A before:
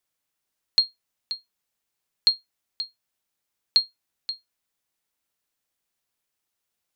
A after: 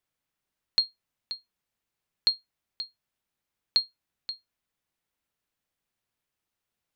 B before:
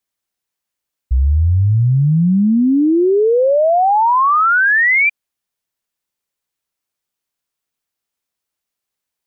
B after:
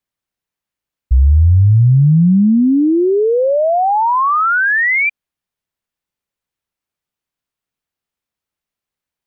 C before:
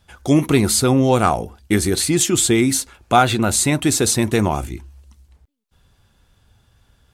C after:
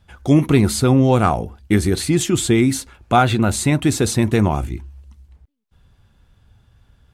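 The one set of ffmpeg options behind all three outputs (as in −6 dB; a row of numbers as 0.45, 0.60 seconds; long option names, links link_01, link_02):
-af "bass=frequency=250:gain=5,treble=frequency=4000:gain=-6,volume=-1dB"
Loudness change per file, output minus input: −4.5, +1.0, 0.0 LU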